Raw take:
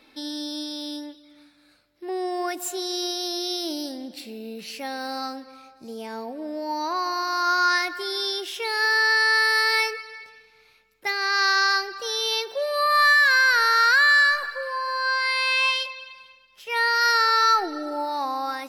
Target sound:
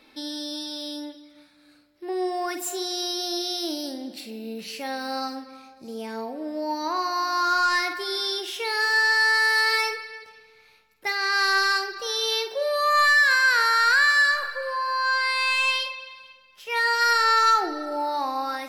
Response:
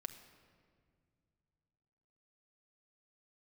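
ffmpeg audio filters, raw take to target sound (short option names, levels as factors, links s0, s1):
-filter_complex "[0:a]asoftclip=type=tanh:threshold=0.211,asplit=2[s0][s1];[1:a]atrim=start_sample=2205,adelay=49[s2];[s1][s2]afir=irnorm=-1:irlink=0,volume=0.531[s3];[s0][s3]amix=inputs=2:normalize=0"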